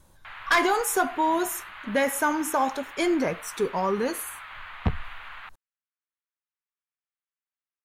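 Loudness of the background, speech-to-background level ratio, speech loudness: -41.5 LUFS, 15.5 dB, -26.0 LUFS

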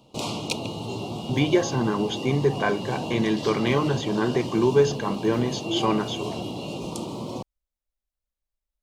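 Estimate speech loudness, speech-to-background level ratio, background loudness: -24.5 LUFS, 7.5 dB, -32.0 LUFS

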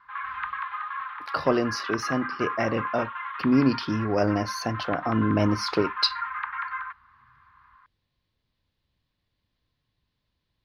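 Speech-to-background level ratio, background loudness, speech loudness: 6.5 dB, -33.0 LUFS, -26.5 LUFS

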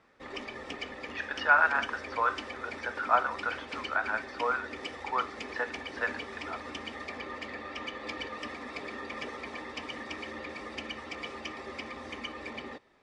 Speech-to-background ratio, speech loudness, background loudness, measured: 9.5 dB, -30.5 LUFS, -40.0 LUFS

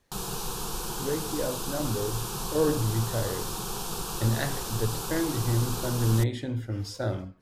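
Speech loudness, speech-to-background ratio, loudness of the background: -30.0 LUFS, 3.5 dB, -33.5 LUFS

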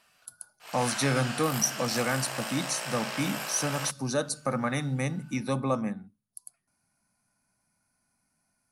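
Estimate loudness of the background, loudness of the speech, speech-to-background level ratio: -34.5 LUFS, -30.0 LUFS, 4.5 dB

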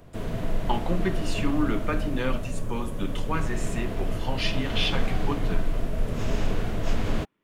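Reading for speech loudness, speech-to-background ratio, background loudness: -31.0 LUFS, 1.0 dB, -32.0 LUFS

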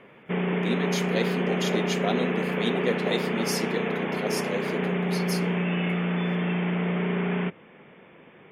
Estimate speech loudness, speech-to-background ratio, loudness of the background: -32.0 LUFS, -5.0 dB, -27.0 LUFS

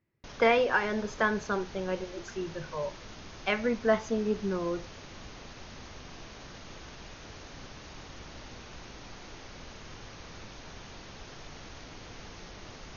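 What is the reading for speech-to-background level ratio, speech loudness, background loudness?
16.5 dB, -30.0 LUFS, -46.5 LUFS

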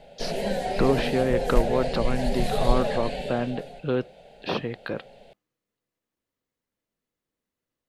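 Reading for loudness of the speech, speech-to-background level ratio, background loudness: -28.0 LUFS, 1.0 dB, -29.0 LUFS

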